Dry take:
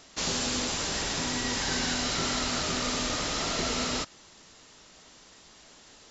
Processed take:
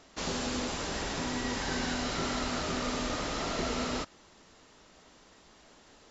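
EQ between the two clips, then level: peaking EQ 130 Hz -3.5 dB 0.75 oct; treble shelf 2.5 kHz -10 dB; 0.0 dB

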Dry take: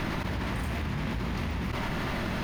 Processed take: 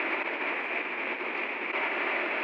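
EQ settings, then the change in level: steep high-pass 330 Hz 36 dB/octave; resonant low-pass 2.4 kHz, resonance Q 6.9; tilt shelf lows +4.5 dB, about 1.3 kHz; 0.0 dB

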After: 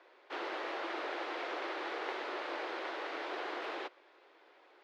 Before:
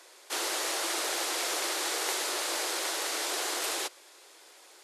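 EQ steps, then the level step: distance through air 270 m; tone controls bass +3 dB, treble -12 dB; -2.5 dB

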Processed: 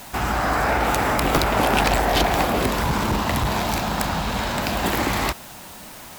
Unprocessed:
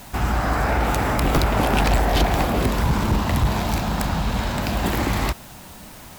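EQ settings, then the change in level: bass shelf 210 Hz -9.5 dB; +3.0 dB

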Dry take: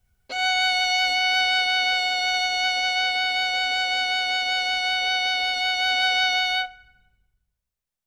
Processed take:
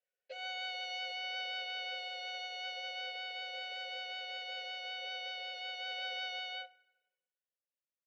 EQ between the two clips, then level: vowel filter e; high-pass 400 Hz 24 dB/octave; resonant low-pass 6.3 kHz, resonance Q 1.7; -3.0 dB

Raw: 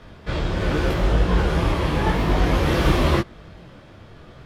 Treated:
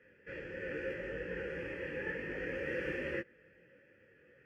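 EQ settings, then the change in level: vowel filter e; static phaser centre 1.6 kHz, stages 4; +1.0 dB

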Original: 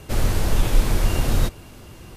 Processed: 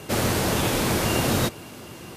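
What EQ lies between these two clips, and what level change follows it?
high-pass 150 Hz 12 dB/octave; +5.0 dB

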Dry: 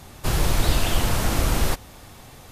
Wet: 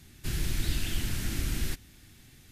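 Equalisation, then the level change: high-order bell 750 Hz -14.5 dB; -9.0 dB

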